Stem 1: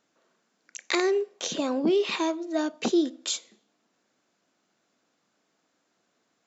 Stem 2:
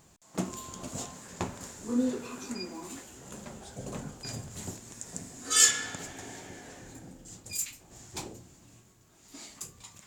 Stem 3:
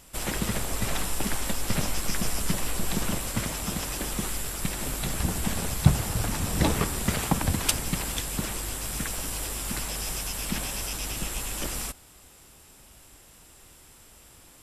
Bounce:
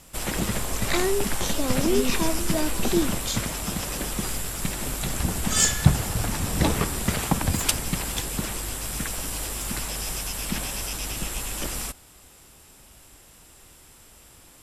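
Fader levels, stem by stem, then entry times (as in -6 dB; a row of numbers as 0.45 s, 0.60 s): -1.0 dB, -0.5 dB, +1.5 dB; 0.00 s, 0.00 s, 0.00 s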